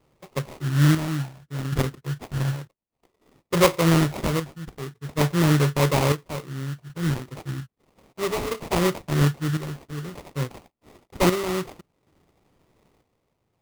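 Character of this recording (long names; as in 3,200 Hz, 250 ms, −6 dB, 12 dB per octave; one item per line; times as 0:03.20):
chopped level 0.58 Hz, depth 60%, duty 55%
phaser sweep stages 8, 0.38 Hz, lowest notch 730–2,900 Hz
aliases and images of a low sample rate 1,600 Hz, jitter 20%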